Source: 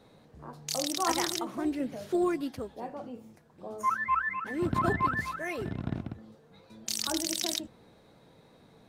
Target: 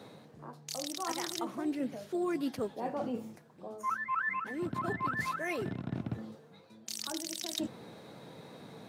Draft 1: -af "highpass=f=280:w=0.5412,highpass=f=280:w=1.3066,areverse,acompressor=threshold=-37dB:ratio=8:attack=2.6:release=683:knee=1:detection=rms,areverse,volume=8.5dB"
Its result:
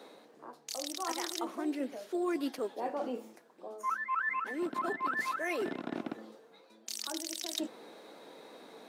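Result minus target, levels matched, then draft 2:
125 Hz band -16.5 dB
-af "highpass=f=110:w=0.5412,highpass=f=110:w=1.3066,areverse,acompressor=threshold=-37dB:ratio=8:attack=2.6:release=683:knee=1:detection=rms,areverse,volume=8.5dB"

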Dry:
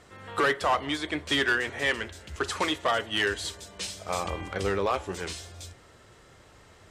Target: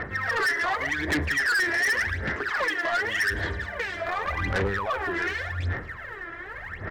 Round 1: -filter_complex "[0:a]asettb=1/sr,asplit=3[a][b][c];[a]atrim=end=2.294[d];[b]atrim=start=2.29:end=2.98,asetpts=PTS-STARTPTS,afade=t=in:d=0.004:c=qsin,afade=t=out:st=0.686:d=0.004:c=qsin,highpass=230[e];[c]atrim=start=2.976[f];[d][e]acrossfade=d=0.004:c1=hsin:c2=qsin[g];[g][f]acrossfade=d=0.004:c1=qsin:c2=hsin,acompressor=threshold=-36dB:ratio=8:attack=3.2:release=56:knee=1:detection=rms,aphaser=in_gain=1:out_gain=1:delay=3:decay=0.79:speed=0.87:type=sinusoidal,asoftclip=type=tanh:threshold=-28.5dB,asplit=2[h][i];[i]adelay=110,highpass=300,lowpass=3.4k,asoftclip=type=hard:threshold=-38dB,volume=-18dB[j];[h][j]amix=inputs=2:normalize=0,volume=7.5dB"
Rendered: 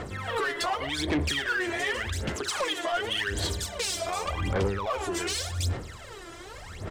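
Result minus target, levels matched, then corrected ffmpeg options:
2000 Hz band -5.0 dB
-filter_complex "[0:a]asettb=1/sr,asplit=3[a][b][c];[a]atrim=end=2.294[d];[b]atrim=start=2.29:end=2.98,asetpts=PTS-STARTPTS,afade=t=in:d=0.004:c=qsin,afade=t=out:st=0.686:d=0.004:c=qsin,highpass=230[e];[c]atrim=start=2.976[f];[d][e]acrossfade=d=0.004:c1=hsin:c2=qsin[g];[g][f]acrossfade=d=0.004:c1=qsin:c2=hsin,acompressor=threshold=-36dB:ratio=8:attack=3.2:release=56:knee=1:detection=rms,lowpass=f=1.8k:t=q:w=6.1,aphaser=in_gain=1:out_gain=1:delay=3:decay=0.79:speed=0.87:type=sinusoidal,asoftclip=type=tanh:threshold=-28.5dB,asplit=2[h][i];[i]adelay=110,highpass=300,lowpass=3.4k,asoftclip=type=hard:threshold=-38dB,volume=-18dB[j];[h][j]amix=inputs=2:normalize=0,volume=7.5dB"

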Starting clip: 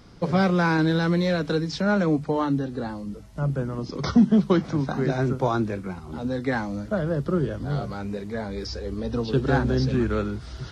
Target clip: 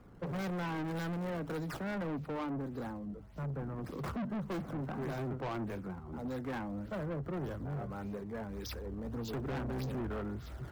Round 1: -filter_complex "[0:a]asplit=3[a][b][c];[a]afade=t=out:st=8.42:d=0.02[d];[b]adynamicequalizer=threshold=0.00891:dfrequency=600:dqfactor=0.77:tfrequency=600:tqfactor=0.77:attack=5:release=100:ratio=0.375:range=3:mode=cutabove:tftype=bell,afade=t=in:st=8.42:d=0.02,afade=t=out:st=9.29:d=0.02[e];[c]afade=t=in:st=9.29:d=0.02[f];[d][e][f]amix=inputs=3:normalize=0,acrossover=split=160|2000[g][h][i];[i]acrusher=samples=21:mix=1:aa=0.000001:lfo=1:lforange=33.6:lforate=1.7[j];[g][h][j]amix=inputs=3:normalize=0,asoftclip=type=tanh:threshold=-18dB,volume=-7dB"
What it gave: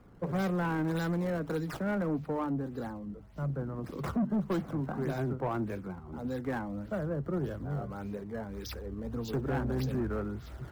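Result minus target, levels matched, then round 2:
soft clip: distortion -7 dB
-filter_complex "[0:a]asplit=3[a][b][c];[a]afade=t=out:st=8.42:d=0.02[d];[b]adynamicequalizer=threshold=0.00891:dfrequency=600:dqfactor=0.77:tfrequency=600:tqfactor=0.77:attack=5:release=100:ratio=0.375:range=3:mode=cutabove:tftype=bell,afade=t=in:st=8.42:d=0.02,afade=t=out:st=9.29:d=0.02[e];[c]afade=t=in:st=9.29:d=0.02[f];[d][e][f]amix=inputs=3:normalize=0,acrossover=split=160|2000[g][h][i];[i]acrusher=samples=21:mix=1:aa=0.000001:lfo=1:lforange=33.6:lforate=1.7[j];[g][h][j]amix=inputs=3:normalize=0,asoftclip=type=tanh:threshold=-27.5dB,volume=-7dB"

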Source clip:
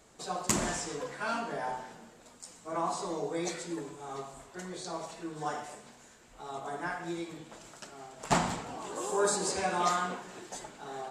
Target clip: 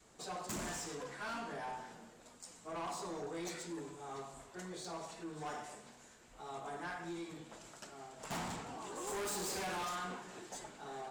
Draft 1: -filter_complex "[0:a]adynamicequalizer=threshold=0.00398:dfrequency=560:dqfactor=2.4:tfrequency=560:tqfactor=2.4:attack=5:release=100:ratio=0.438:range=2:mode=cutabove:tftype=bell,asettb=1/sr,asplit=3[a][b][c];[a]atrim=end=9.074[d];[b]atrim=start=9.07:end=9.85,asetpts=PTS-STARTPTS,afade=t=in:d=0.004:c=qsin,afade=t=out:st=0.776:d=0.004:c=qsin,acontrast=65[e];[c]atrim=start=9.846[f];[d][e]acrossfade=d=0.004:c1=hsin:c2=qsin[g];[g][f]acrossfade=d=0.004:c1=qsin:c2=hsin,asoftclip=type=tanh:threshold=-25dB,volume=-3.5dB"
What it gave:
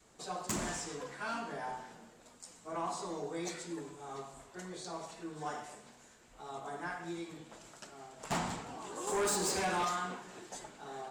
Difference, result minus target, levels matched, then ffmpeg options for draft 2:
soft clip: distortion -6 dB
-filter_complex "[0:a]adynamicequalizer=threshold=0.00398:dfrequency=560:dqfactor=2.4:tfrequency=560:tqfactor=2.4:attack=5:release=100:ratio=0.438:range=2:mode=cutabove:tftype=bell,asettb=1/sr,asplit=3[a][b][c];[a]atrim=end=9.074[d];[b]atrim=start=9.07:end=9.85,asetpts=PTS-STARTPTS,afade=t=in:d=0.004:c=qsin,afade=t=out:st=0.776:d=0.004:c=qsin,acontrast=65[e];[c]atrim=start=9.846[f];[d][e]acrossfade=d=0.004:c1=hsin:c2=qsin[g];[g][f]acrossfade=d=0.004:c1=qsin:c2=hsin,asoftclip=type=tanh:threshold=-34.5dB,volume=-3.5dB"

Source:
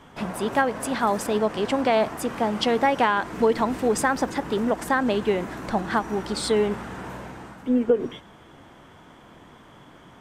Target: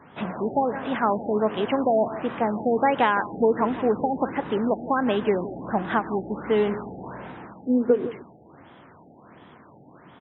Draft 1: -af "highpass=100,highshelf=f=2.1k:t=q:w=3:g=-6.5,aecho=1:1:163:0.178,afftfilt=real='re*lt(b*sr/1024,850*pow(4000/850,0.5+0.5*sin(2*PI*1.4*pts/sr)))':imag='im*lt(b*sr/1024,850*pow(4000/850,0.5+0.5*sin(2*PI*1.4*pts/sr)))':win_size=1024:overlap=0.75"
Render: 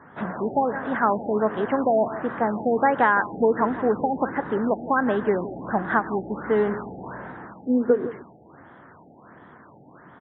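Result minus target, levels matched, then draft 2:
4000 Hz band -11.5 dB
-af "highpass=100,aecho=1:1:163:0.178,afftfilt=real='re*lt(b*sr/1024,850*pow(4000/850,0.5+0.5*sin(2*PI*1.4*pts/sr)))':imag='im*lt(b*sr/1024,850*pow(4000/850,0.5+0.5*sin(2*PI*1.4*pts/sr)))':win_size=1024:overlap=0.75"

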